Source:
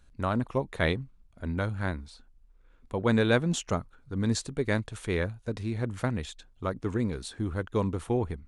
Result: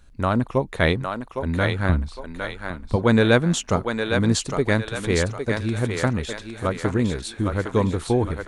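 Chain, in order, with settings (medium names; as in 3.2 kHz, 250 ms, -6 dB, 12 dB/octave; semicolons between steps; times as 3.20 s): 1.89–2.96 s: tone controls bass +10 dB, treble -3 dB; on a send: thinning echo 809 ms, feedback 45%, high-pass 450 Hz, level -4 dB; on the sum: trim +7 dB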